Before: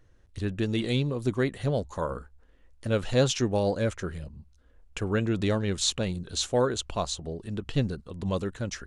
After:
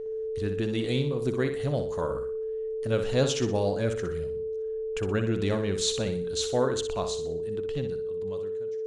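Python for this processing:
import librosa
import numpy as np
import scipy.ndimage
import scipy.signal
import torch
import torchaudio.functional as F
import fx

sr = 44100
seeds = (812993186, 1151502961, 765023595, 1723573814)

y = fx.fade_out_tail(x, sr, length_s=2.09)
y = y + 10.0 ** (-31.0 / 20.0) * np.sin(2.0 * np.pi * 440.0 * np.arange(len(y)) / sr)
y = fx.room_flutter(y, sr, wall_m=10.5, rt60_s=0.43)
y = F.gain(torch.from_numpy(y), -2.0).numpy()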